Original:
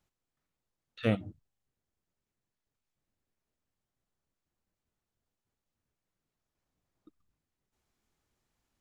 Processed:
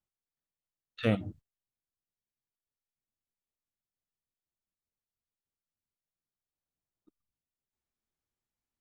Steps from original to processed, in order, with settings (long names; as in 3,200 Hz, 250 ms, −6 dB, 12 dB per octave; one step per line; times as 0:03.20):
noise gate −54 dBFS, range −18 dB
in parallel at +0.5 dB: brickwall limiter −26.5 dBFS, peak gain reduction 10.5 dB
on the sum: level −2 dB